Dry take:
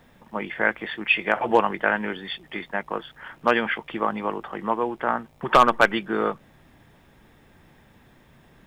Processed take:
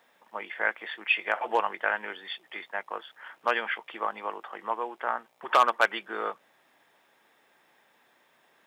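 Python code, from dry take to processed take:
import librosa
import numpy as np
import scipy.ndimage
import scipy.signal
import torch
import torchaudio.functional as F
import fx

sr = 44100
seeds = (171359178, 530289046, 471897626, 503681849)

y = scipy.signal.sosfilt(scipy.signal.butter(2, 570.0, 'highpass', fs=sr, output='sos'), x)
y = y * 10.0 ** (-4.5 / 20.0)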